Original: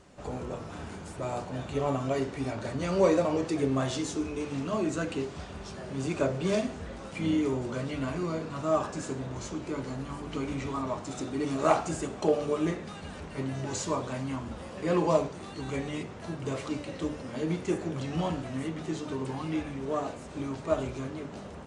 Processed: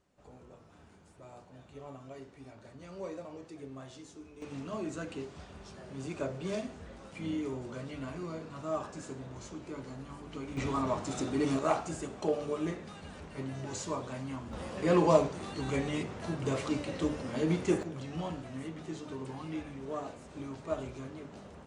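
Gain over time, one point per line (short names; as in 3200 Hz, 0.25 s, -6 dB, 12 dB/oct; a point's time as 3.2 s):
-18 dB
from 4.42 s -8 dB
from 10.57 s +1 dB
from 11.59 s -5.5 dB
from 14.53 s +1 dB
from 17.83 s -7 dB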